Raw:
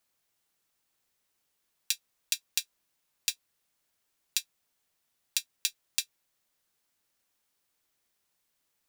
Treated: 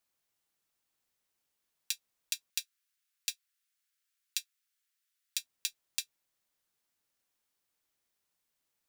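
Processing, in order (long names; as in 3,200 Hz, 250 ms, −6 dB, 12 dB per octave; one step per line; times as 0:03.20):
0:02.50–0:05.37: Butterworth high-pass 1,300 Hz 36 dB per octave
level −5 dB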